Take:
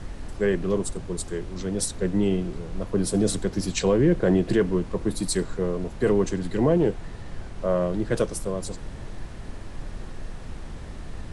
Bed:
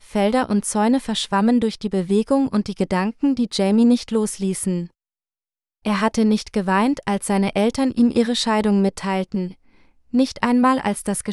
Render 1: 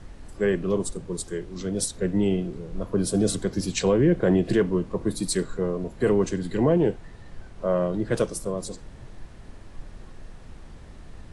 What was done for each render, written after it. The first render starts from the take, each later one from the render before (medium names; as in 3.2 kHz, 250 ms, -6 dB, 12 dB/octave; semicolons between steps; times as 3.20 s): noise print and reduce 7 dB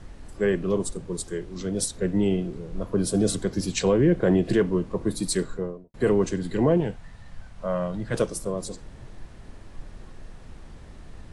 5.43–5.94 s: studio fade out; 6.80–8.14 s: peaking EQ 370 Hz -13 dB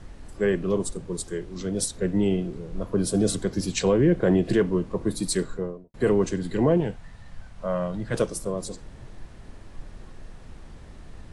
no audible change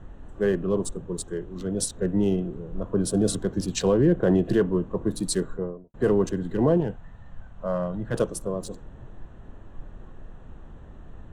local Wiener filter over 9 samples; peaking EQ 2.2 kHz -11.5 dB 0.3 oct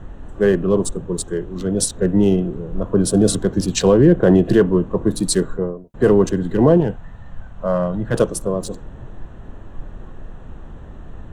trim +8 dB